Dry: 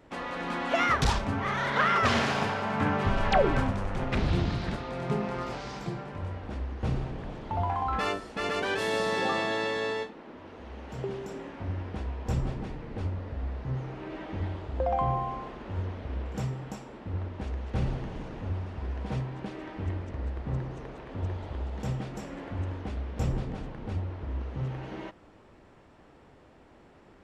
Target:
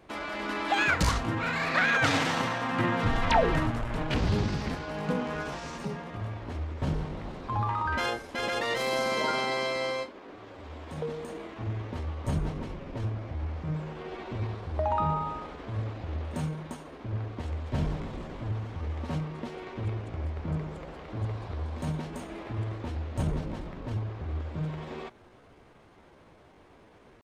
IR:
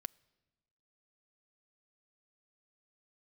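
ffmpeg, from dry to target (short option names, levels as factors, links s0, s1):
-af "asetrate=52444,aresample=44100,atempo=0.840896"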